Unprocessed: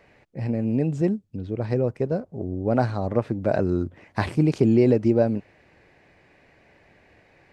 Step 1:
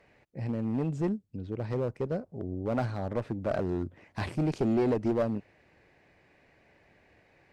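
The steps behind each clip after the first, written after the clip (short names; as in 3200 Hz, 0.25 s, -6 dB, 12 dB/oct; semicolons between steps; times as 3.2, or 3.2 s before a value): one-sided clip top -18.5 dBFS; gain -6 dB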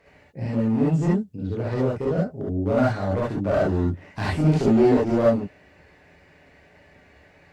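non-linear reverb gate 90 ms rising, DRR -6 dB; gain +2 dB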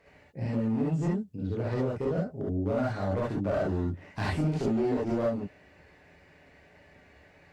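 compressor 6:1, threshold -21 dBFS, peak gain reduction 8.5 dB; gain -3.5 dB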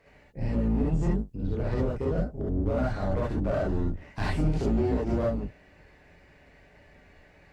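octaver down 2 oct, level +1 dB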